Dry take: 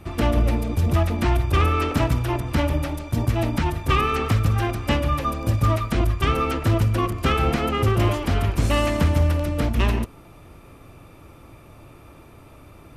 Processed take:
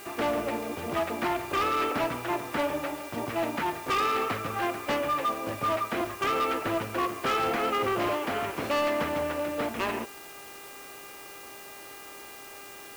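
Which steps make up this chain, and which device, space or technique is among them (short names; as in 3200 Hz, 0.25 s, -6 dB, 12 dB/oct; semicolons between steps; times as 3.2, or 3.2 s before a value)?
aircraft radio (BPF 400–2600 Hz; hard clip -23 dBFS, distortion -13 dB; buzz 400 Hz, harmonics 7, -49 dBFS -1 dB/oct; white noise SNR 18 dB)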